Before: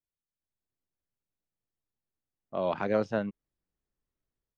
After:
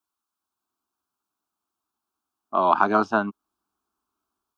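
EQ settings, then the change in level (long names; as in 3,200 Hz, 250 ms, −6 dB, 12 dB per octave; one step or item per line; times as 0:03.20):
high-pass filter 110 Hz 12 dB per octave
parametric band 1,300 Hz +14 dB 1.3 octaves
phaser with its sweep stopped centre 520 Hz, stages 6
+8.5 dB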